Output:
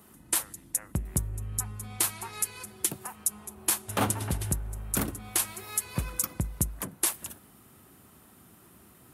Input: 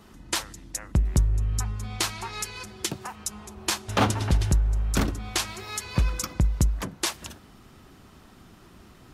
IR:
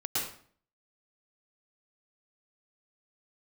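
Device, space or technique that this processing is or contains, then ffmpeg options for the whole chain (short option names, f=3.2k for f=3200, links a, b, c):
budget condenser microphone: -af "highpass=83,highshelf=f=7.7k:t=q:w=1.5:g=13,volume=-5dB"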